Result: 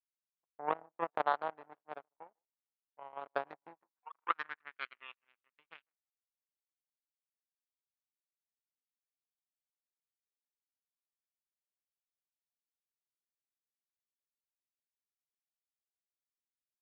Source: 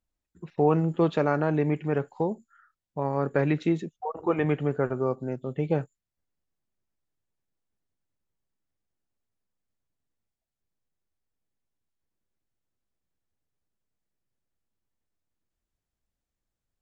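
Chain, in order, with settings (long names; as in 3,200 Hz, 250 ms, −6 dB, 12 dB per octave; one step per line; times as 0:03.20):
flat-topped bell 1,300 Hz +14 dB 1.2 octaves
delay that swaps between a low-pass and a high-pass 151 ms, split 1,000 Hz, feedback 66%, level −13 dB
power curve on the samples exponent 3
band-pass filter sweep 720 Hz → 2,700 Hz, 0:03.64–0:05.08
level +1.5 dB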